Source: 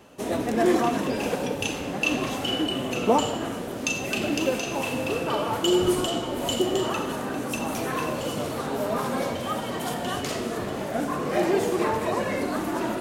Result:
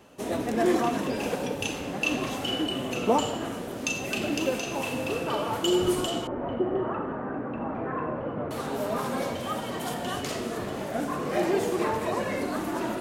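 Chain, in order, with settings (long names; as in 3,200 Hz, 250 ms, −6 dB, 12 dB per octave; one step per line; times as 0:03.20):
0:06.27–0:08.51: low-pass filter 1,700 Hz 24 dB per octave
level −2.5 dB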